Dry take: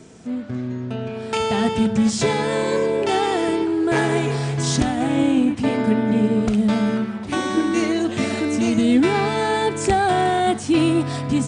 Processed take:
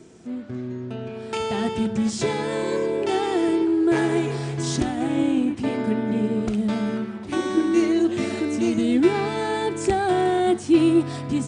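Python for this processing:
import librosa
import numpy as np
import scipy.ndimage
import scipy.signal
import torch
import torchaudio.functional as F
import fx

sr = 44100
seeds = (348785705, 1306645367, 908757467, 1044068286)

y = fx.peak_eq(x, sr, hz=350.0, db=10.5, octaves=0.24)
y = y * librosa.db_to_amplitude(-5.5)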